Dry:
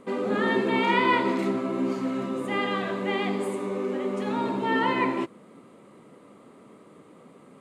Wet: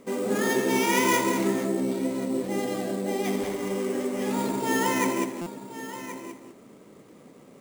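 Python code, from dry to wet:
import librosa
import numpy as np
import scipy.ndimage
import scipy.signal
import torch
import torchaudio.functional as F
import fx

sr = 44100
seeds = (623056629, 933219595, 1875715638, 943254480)

y = fx.high_shelf(x, sr, hz=8000.0, db=11.0)
y = y + 10.0 ** (-12.5 / 20.0) * np.pad(y, (int(1076 * sr / 1000.0), 0))[:len(y)]
y = fx.spec_box(y, sr, start_s=1.66, length_s=1.59, low_hz=830.0, high_hz=3900.0, gain_db=-9)
y = y + 10.0 ** (-8.0 / 20.0) * np.pad(y, (int(195 * sr / 1000.0), 0))[:len(y)]
y = fx.sample_hold(y, sr, seeds[0], rate_hz=8300.0, jitter_pct=0)
y = fx.peak_eq(y, sr, hz=1200.0, db=-6.0, octaves=0.66)
y = fx.buffer_glitch(y, sr, at_s=(5.41,), block=256, repeats=8)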